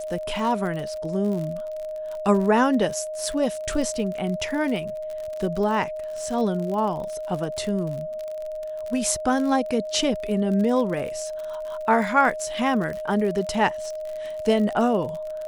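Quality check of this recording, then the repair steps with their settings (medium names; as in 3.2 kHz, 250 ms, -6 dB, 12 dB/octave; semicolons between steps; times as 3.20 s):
crackle 54 per s -30 dBFS
whine 620 Hz -29 dBFS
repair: de-click; band-stop 620 Hz, Q 30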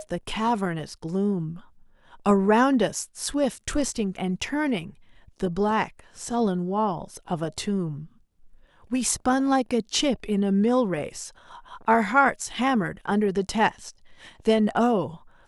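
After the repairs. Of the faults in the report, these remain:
nothing left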